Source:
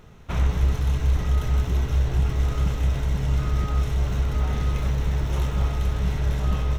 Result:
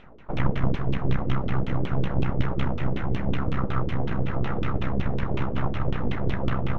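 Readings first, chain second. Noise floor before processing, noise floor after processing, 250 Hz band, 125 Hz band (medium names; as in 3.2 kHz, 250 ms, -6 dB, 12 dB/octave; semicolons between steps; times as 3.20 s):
-30 dBFS, -30 dBFS, +5.0 dB, -3.5 dB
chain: Chebyshev shaper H 2 -8 dB, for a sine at -10 dBFS; full-wave rectifier; LFO low-pass saw down 5.4 Hz 330–3300 Hz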